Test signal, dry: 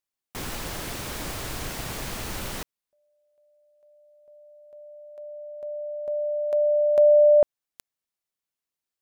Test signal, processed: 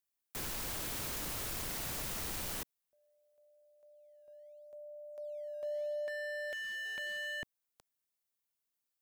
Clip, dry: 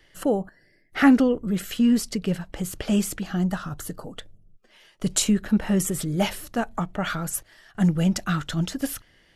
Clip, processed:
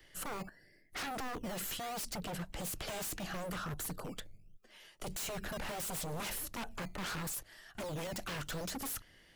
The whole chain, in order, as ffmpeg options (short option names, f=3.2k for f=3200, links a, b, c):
-filter_complex "[0:a]highshelf=f=9.4k:g=9,acrossover=split=300|1200[a][b][c];[a]acrusher=samples=11:mix=1:aa=0.000001:lfo=1:lforange=17.6:lforate=0.76[d];[d][b][c]amix=inputs=3:normalize=0,acompressor=threshold=-23dB:ratio=12:attack=0.34:release=24:knee=6:detection=rms,aeval=exprs='0.0299*(abs(mod(val(0)/0.0299+3,4)-2)-1)':c=same,volume=-4dB"